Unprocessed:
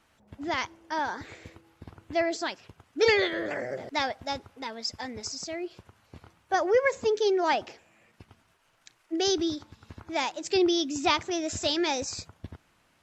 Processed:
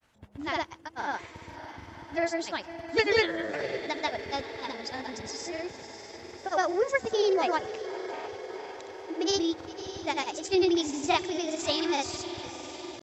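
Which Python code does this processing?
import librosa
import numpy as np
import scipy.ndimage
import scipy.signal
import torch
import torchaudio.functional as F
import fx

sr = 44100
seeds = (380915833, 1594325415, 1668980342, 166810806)

y = fx.echo_diffused(x, sr, ms=621, feedback_pct=69, wet_db=-12.0)
y = fx.granulator(y, sr, seeds[0], grain_ms=100.0, per_s=20.0, spray_ms=100.0, spread_st=0)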